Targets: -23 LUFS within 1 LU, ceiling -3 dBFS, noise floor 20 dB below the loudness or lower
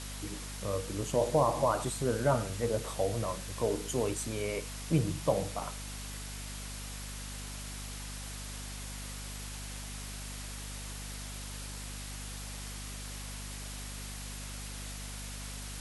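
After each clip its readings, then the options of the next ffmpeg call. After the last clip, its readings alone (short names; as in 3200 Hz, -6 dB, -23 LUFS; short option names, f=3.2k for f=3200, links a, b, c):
hum 50 Hz; harmonics up to 250 Hz; hum level -41 dBFS; noise floor -42 dBFS; noise floor target -56 dBFS; loudness -36.0 LUFS; peak -15.0 dBFS; loudness target -23.0 LUFS
-> -af "bandreject=f=50:t=h:w=6,bandreject=f=100:t=h:w=6,bandreject=f=150:t=h:w=6,bandreject=f=200:t=h:w=6,bandreject=f=250:t=h:w=6"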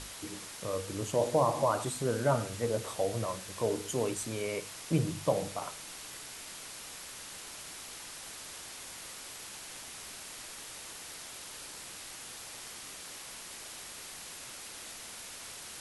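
hum none; noise floor -46 dBFS; noise floor target -57 dBFS
-> -af "afftdn=nr=11:nf=-46"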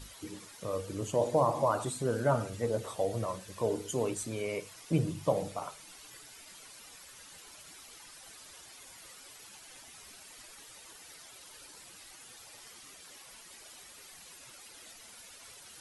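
noise floor -53 dBFS; loudness -33.0 LUFS; peak -15.0 dBFS; loudness target -23.0 LUFS
-> -af "volume=10dB"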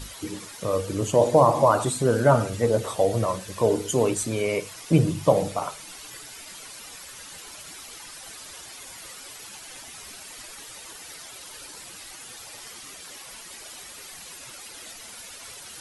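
loudness -23.0 LUFS; peak -5.0 dBFS; noise floor -43 dBFS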